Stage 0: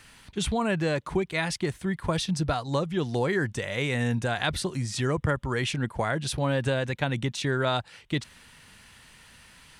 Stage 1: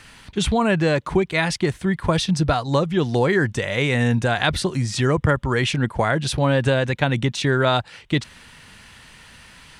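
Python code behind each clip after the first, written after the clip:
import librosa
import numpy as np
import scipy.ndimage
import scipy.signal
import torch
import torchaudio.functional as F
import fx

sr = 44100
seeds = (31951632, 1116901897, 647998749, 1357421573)

y = fx.high_shelf(x, sr, hz=9900.0, db=-9.0)
y = y * 10.0 ** (7.5 / 20.0)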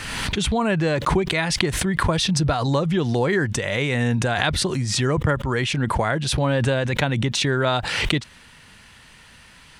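y = fx.pre_swell(x, sr, db_per_s=31.0)
y = y * 10.0 ** (-2.5 / 20.0)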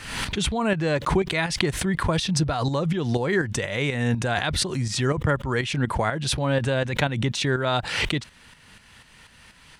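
y = fx.tremolo_shape(x, sr, shape='saw_up', hz=4.1, depth_pct=60)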